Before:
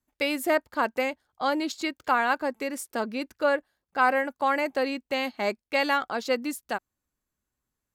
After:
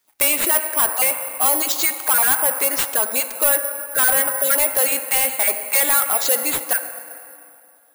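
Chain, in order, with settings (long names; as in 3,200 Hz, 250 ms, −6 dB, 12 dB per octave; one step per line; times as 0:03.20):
time-frequency cells dropped at random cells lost 22%
in parallel at +2.5 dB: downward compressor, threshold −32 dBFS, peak gain reduction 14.5 dB
on the sum: high-pass filter 610 Hz 12 dB per octave
on a send at −12 dB: convolution reverb RT60 2.7 s, pre-delay 25 ms
on the sum: soft clipping −26 dBFS, distortion −7 dB
bad sample-rate conversion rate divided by 4×, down none, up zero stuff
level +7.5 dB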